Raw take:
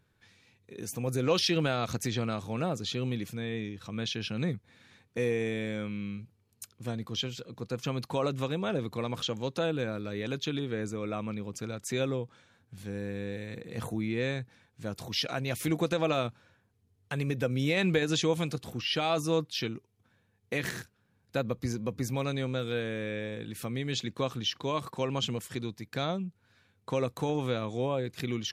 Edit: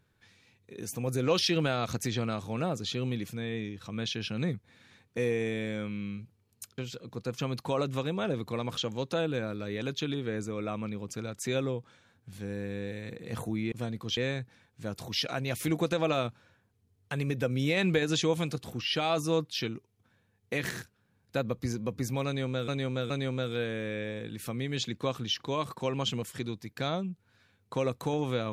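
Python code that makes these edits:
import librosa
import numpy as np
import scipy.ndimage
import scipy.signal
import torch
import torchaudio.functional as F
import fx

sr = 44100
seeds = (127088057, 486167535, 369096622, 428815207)

y = fx.edit(x, sr, fx.move(start_s=6.78, length_s=0.45, to_s=14.17),
    fx.repeat(start_s=22.26, length_s=0.42, count=3), tone=tone)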